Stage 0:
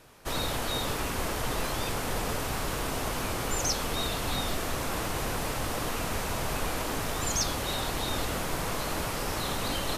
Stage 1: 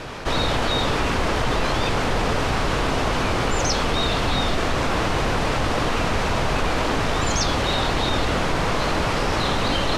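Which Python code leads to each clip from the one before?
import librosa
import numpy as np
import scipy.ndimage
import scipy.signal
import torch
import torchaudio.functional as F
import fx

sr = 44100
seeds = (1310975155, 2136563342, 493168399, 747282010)

y = scipy.signal.sosfilt(scipy.signal.butter(2, 4600.0, 'lowpass', fs=sr, output='sos'), x)
y = fx.env_flatten(y, sr, amount_pct=50)
y = y * 10.0 ** (8.0 / 20.0)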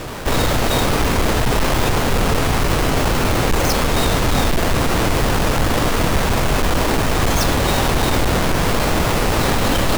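y = fx.halfwave_hold(x, sr)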